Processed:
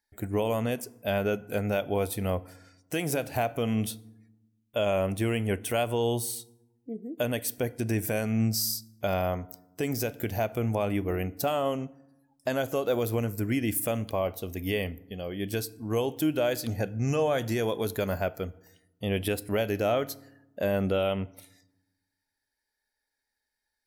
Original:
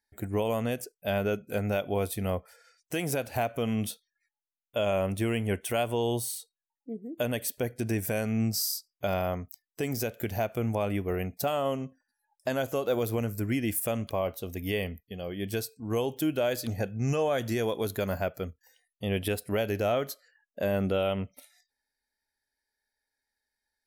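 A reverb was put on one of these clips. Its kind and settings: FDN reverb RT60 0.94 s, low-frequency decay 1.5×, high-frequency decay 0.55×, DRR 18 dB; gain +1 dB

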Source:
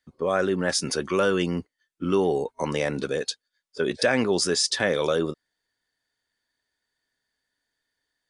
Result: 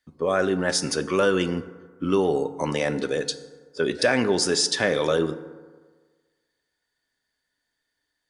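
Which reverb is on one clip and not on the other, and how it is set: FDN reverb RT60 1.5 s, low-frequency decay 0.9×, high-frequency decay 0.45×, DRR 11 dB; gain +1 dB

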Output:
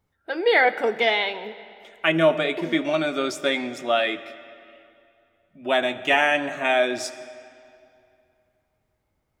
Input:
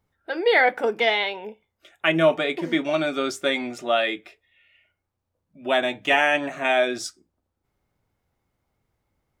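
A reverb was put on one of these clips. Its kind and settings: digital reverb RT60 2.6 s, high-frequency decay 0.8×, pre-delay 30 ms, DRR 14.5 dB

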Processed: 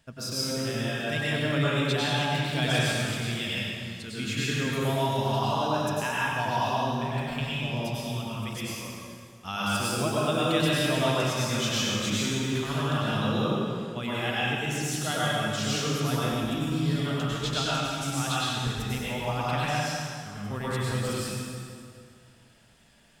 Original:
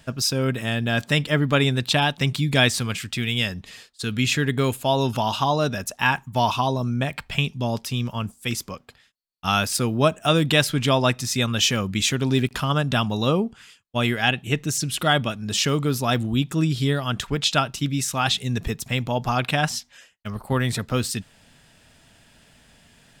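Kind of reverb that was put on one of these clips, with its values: plate-style reverb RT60 2.3 s, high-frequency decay 0.8×, pre-delay 85 ms, DRR -8 dB; gain -13.5 dB

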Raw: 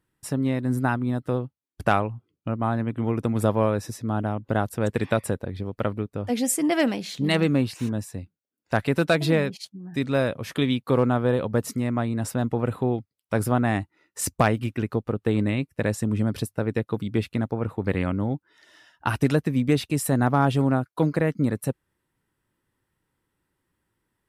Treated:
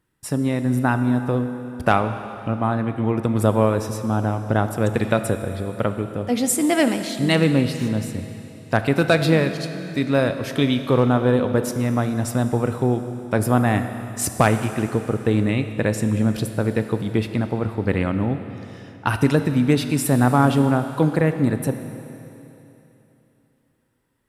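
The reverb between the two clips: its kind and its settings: Schroeder reverb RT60 3.1 s, combs from 25 ms, DRR 8.5 dB; gain +3.5 dB

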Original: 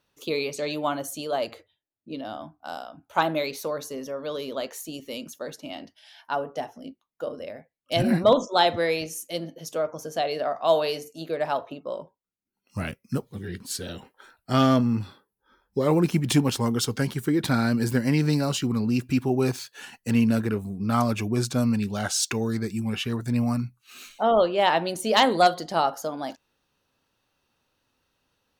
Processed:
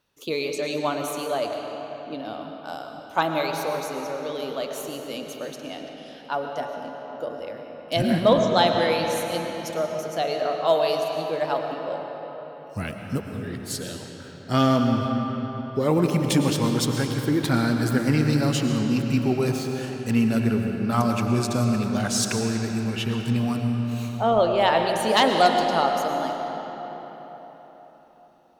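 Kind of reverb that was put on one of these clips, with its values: digital reverb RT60 4.4 s, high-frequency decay 0.65×, pre-delay 70 ms, DRR 3 dB

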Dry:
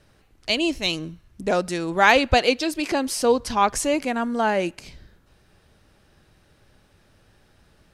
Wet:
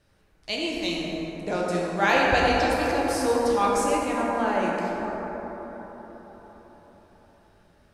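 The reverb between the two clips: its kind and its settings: plate-style reverb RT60 4.8 s, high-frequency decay 0.3×, DRR -5 dB; gain -8.5 dB

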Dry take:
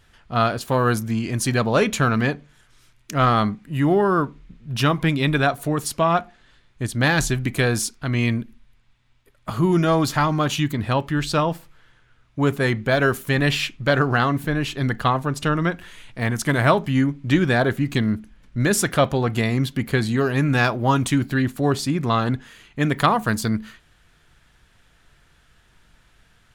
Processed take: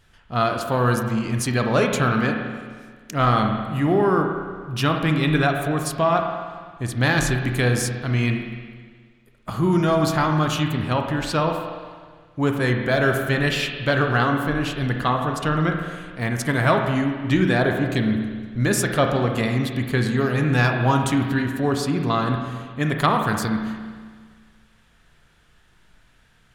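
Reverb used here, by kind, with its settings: spring tank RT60 1.7 s, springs 32/58 ms, chirp 30 ms, DRR 3.5 dB; gain -2 dB

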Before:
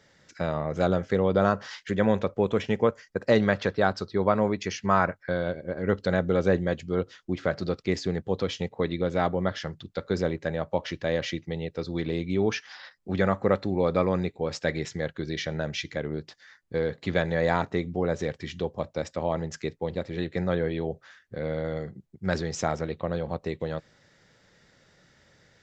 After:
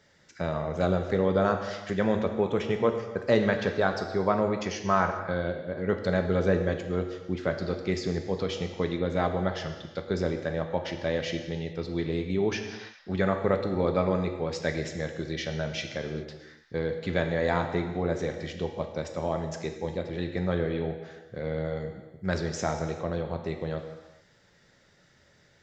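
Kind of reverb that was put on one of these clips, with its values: non-linear reverb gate 0.45 s falling, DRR 5 dB; gain -2.5 dB

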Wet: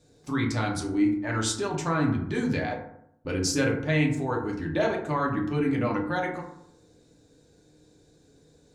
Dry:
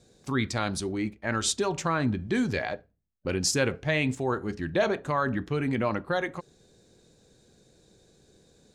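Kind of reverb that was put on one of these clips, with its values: FDN reverb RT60 0.73 s, low-frequency decay 1.2×, high-frequency decay 0.4×, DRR -1.5 dB; gain -4 dB

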